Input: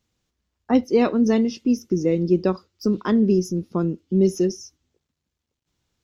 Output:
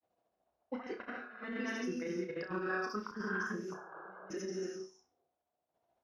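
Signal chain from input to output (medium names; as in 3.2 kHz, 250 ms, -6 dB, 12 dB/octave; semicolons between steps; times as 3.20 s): granulator, grains 14 per s, pitch spread up and down by 0 st; reverberation, pre-delay 3 ms, DRR 3 dB; auto-wah 670–1600 Hz, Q 7, up, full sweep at -22.5 dBFS; painted sound noise, 3.74–4.30 s, 330–1700 Hz -43 dBFS; compressor with a negative ratio -51 dBFS, ratio -0.5; flutter echo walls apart 5.5 m, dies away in 0.28 s; trim +10.5 dB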